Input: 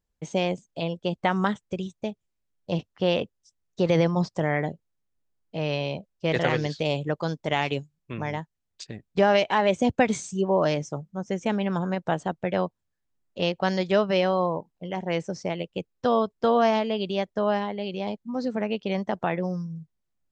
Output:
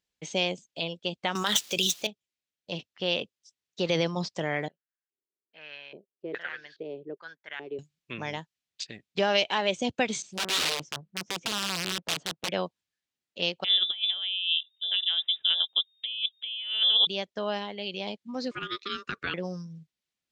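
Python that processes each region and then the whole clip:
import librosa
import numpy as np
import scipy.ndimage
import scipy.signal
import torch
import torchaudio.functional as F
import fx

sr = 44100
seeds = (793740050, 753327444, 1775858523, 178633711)

y = fx.chain(x, sr, fx.median_filter(points=5),
    fx.riaa(side='recording'),
    fx.env_flatten(amount_pct=100), at=(1.35, 2.07))
y = fx.chain(y, sr, fx.low_shelf(hz=390.0, db=7.0),
    fx.filter_lfo_bandpass(shape='square', hz=1.2, low_hz=390.0, high_hz=1600.0, q=5.6), at=(4.68, 7.79))
y = fx.chain(y, sr, fx.lowpass(hz=1300.0, slope=6),
    fx.overflow_wrap(gain_db=22.0),
    fx.doppler_dist(depth_ms=0.78), at=(10.22, 12.49))
y = fx.chain(y, sr, fx.freq_invert(carrier_hz=3700),
    fx.over_compress(threshold_db=-27.0, ratio=-0.5), at=(13.64, 17.07))
y = fx.chain(y, sr, fx.steep_highpass(hz=300.0, slope=48),
    fx.ring_mod(carrier_hz=800.0), at=(18.51, 19.34))
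y = fx.weighting(y, sr, curve='D')
y = fx.rider(y, sr, range_db=4, speed_s=2.0)
y = fx.dynamic_eq(y, sr, hz=2000.0, q=2.2, threshold_db=-35.0, ratio=4.0, max_db=-6)
y = y * 10.0 ** (-8.0 / 20.0)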